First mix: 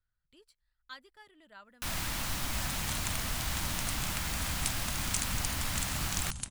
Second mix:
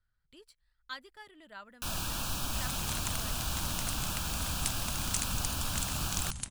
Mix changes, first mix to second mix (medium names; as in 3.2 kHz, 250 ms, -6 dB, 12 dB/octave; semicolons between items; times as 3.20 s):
speech +5.0 dB; first sound: add Butterworth band-stop 2 kHz, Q 2.5